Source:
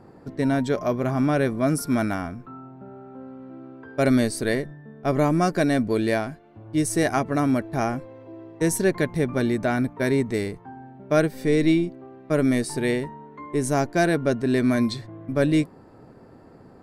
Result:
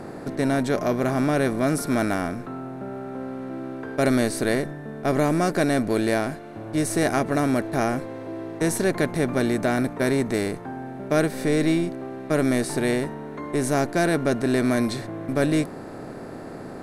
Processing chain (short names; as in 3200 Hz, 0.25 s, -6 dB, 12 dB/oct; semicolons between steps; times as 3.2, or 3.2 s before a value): per-bin compression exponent 0.6; gain -3.5 dB